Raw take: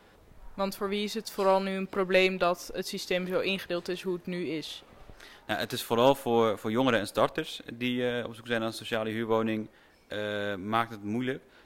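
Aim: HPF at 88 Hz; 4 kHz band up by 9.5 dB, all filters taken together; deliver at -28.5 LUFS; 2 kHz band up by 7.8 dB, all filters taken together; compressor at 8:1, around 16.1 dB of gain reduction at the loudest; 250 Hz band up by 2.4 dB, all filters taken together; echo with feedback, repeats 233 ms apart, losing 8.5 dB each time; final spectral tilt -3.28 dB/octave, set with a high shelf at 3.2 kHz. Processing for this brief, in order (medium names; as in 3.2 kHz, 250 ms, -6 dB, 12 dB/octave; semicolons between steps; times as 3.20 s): high-pass 88 Hz; peaking EQ 250 Hz +3 dB; peaking EQ 2 kHz +6 dB; treble shelf 3.2 kHz +7.5 dB; peaking EQ 4 kHz +4.5 dB; compression 8:1, threshold -30 dBFS; feedback delay 233 ms, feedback 38%, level -8.5 dB; trim +5.5 dB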